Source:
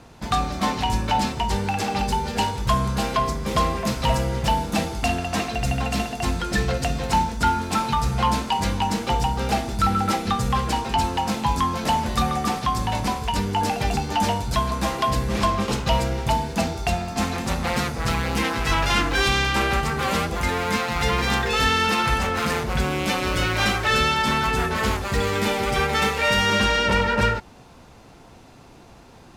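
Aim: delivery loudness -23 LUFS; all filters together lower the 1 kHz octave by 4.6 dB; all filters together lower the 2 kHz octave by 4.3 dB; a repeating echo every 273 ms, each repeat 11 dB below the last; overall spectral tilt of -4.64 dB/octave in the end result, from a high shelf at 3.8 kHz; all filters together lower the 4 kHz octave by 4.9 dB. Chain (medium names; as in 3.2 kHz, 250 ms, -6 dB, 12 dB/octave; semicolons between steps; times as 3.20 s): peaking EQ 1 kHz -5 dB; peaking EQ 2 kHz -3 dB; treble shelf 3.8 kHz +5 dB; peaking EQ 4 kHz -8.5 dB; feedback delay 273 ms, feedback 28%, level -11 dB; trim +1.5 dB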